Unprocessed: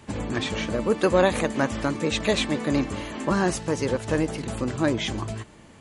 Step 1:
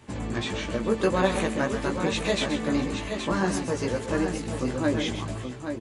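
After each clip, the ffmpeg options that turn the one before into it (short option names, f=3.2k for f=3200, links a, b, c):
-filter_complex "[0:a]flanger=delay=15.5:depth=2.3:speed=1.7,asplit=2[a][b];[b]aecho=0:1:131|419|823:0.335|0.119|0.422[c];[a][c]amix=inputs=2:normalize=0"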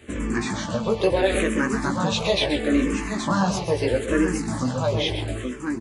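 -filter_complex "[0:a]asplit=2[a][b];[b]alimiter=limit=-17dB:level=0:latency=1:release=64,volume=0.5dB[c];[a][c]amix=inputs=2:normalize=0,asplit=2[d][e];[e]afreqshift=-0.75[f];[d][f]amix=inputs=2:normalize=1,volume=1dB"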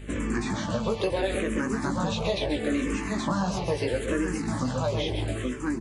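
-filter_complex "[0:a]acrossover=split=970|4600[a][b][c];[a]acompressor=threshold=-25dB:ratio=4[d];[b]acompressor=threshold=-36dB:ratio=4[e];[c]acompressor=threshold=-45dB:ratio=4[f];[d][e][f]amix=inputs=3:normalize=0,aeval=exprs='val(0)+0.01*(sin(2*PI*50*n/s)+sin(2*PI*2*50*n/s)/2+sin(2*PI*3*50*n/s)/3+sin(2*PI*4*50*n/s)/4+sin(2*PI*5*50*n/s)/5)':c=same"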